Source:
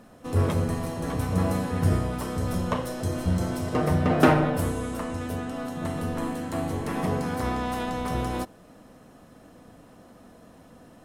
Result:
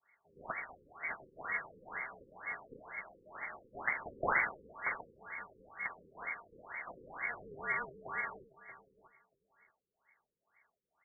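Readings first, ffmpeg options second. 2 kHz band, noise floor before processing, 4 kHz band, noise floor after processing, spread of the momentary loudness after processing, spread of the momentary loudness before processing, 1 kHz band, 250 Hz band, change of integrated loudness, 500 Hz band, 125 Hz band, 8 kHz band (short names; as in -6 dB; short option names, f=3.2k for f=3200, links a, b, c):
-0.5 dB, -52 dBFS, under -40 dB, under -85 dBFS, 12 LU, 8 LU, -12.0 dB, -30.5 dB, -13.0 dB, -19.5 dB, -34.5 dB, under -40 dB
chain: -filter_complex "[0:a]adynamicequalizer=threshold=0.00708:dfrequency=1200:dqfactor=0.72:tfrequency=1200:tqfactor=0.72:attack=5:release=100:ratio=0.375:range=3.5:mode=boostabove:tftype=bell,adynamicsmooth=sensitivity=1.5:basefreq=1.3k,lowpass=f=3.3k:t=q:w=0.5098,lowpass=f=3.3k:t=q:w=0.6013,lowpass=f=3.3k:t=q:w=0.9,lowpass=f=3.3k:t=q:w=2.563,afreqshift=-3900,asplit=2[a][b];[b]adelay=632,lowpass=f=2k:p=1,volume=-14dB,asplit=2[c][d];[d]adelay=632,lowpass=f=2k:p=1,volume=0.17[e];[c][e]amix=inputs=2:normalize=0[f];[a][f]amix=inputs=2:normalize=0,afftfilt=real='re*lt(b*sr/1024,510*pow(2300/510,0.5+0.5*sin(2*PI*2.1*pts/sr)))':imag='im*lt(b*sr/1024,510*pow(2300/510,0.5+0.5*sin(2*PI*2.1*pts/sr)))':win_size=1024:overlap=0.75,volume=9.5dB"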